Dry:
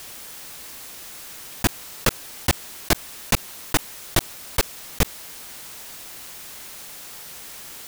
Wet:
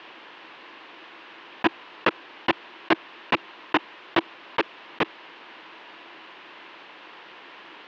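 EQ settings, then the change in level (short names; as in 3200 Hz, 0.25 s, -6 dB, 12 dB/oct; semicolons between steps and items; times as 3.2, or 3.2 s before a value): air absorption 100 m; speaker cabinet 300–3400 Hz, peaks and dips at 330 Hz +9 dB, 1000 Hz +7 dB, 1700 Hz +3 dB, 2800 Hz +4 dB; 0.0 dB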